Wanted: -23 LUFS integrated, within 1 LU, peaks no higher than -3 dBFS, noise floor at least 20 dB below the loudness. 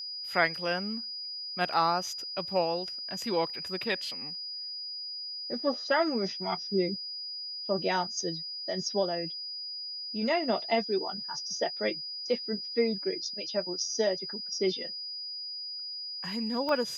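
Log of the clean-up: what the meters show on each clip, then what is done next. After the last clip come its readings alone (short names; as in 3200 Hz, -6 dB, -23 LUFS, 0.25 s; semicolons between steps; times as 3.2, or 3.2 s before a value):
dropouts 1; longest dropout 1.1 ms; steady tone 4900 Hz; tone level -36 dBFS; loudness -31.0 LUFS; peak -10.0 dBFS; loudness target -23.0 LUFS
-> interpolate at 16.69, 1.1 ms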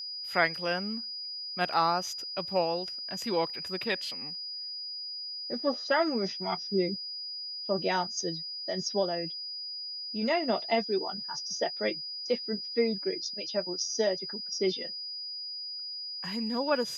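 dropouts 0; steady tone 4900 Hz; tone level -36 dBFS
-> notch 4900 Hz, Q 30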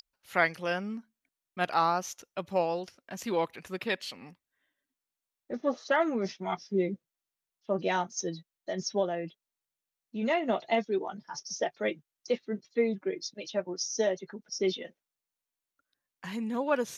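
steady tone none; loudness -32.0 LUFS; peak -10.5 dBFS; loudness target -23.0 LUFS
-> gain +9 dB; limiter -3 dBFS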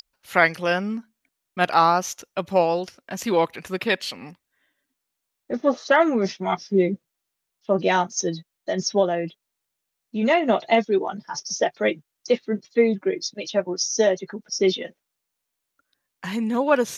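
loudness -23.0 LUFS; peak -3.0 dBFS; noise floor -81 dBFS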